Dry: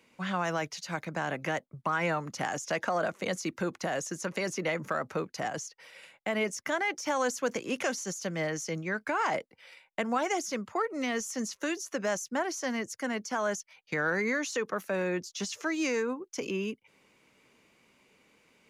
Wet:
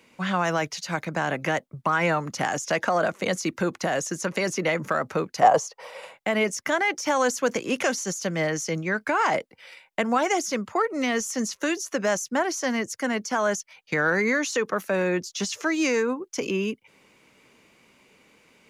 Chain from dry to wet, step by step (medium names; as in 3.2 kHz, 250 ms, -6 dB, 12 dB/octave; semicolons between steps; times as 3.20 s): 5.42–6.14 s: high-order bell 720 Hz +13 dB; trim +6.5 dB